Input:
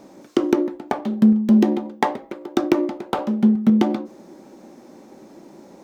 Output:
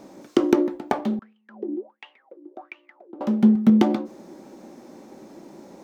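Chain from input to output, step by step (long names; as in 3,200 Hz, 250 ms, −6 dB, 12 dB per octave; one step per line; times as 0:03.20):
0:01.19–0:03.21: LFO wah 1.4 Hz 300–3,000 Hz, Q 14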